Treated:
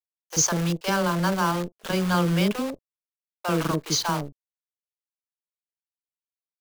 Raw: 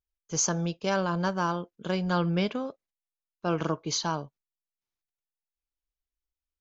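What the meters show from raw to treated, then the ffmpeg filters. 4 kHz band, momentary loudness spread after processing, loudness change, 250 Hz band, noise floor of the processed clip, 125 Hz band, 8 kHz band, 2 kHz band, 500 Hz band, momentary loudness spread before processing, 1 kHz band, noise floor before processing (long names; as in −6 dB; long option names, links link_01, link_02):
+5.5 dB, 9 LU, +4.5 dB, +4.5 dB, below −85 dBFS, +5.0 dB, can't be measured, +5.5 dB, +2.5 dB, 9 LU, +4.0 dB, below −85 dBFS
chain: -filter_complex "[0:a]agate=range=-33dB:threshold=-45dB:ratio=3:detection=peak,acrusher=bits=7:dc=4:mix=0:aa=0.000001,acrossover=split=560[link_01][link_02];[link_01]adelay=40[link_03];[link_03][link_02]amix=inputs=2:normalize=0,volume=5dB"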